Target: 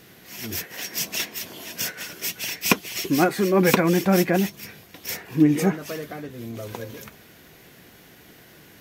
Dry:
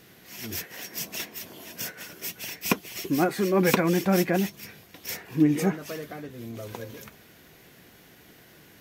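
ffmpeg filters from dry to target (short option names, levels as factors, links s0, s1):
-filter_complex "[0:a]asettb=1/sr,asplit=3[s0][s1][s2];[s0]atrim=end=0.784[s3];[s1]atrim=start=0.78:end=3.29,asetpts=PTS-STARTPTS,afade=t=in:d=0.004:c=qsin,afade=t=out:st=2.506:d=0.004:c=qsin,equalizer=f=4100:w=0.38:g=4.5[s4];[s2]atrim=start=3.286[s5];[s3][s4]acrossfade=d=0.004:c1=hsin:c2=qsin[s6];[s6][s5]acrossfade=d=0.004:c1=qsin:c2=hsin,volume=1.5"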